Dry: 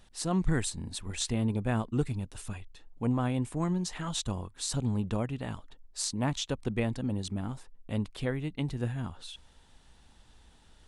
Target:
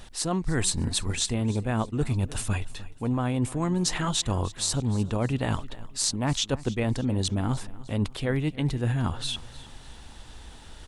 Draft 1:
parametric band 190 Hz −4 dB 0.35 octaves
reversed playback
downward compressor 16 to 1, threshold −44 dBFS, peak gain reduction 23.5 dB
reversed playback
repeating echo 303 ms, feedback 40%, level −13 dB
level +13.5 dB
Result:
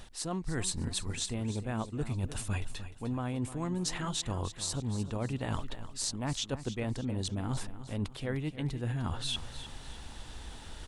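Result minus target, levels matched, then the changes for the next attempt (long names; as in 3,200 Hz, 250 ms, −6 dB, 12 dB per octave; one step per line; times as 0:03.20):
downward compressor: peak gain reduction +8 dB; echo-to-direct +6 dB
change: downward compressor 16 to 1, threshold −35.5 dBFS, peak gain reduction 15.5 dB
change: repeating echo 303 ms, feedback 40%, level −19 dB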